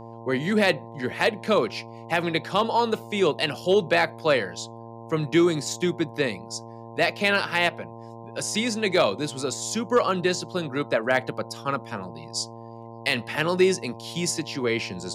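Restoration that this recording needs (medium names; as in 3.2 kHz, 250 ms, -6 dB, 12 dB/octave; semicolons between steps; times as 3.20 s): clip repair -11 dBFS; de-hum 115 Hz, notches 9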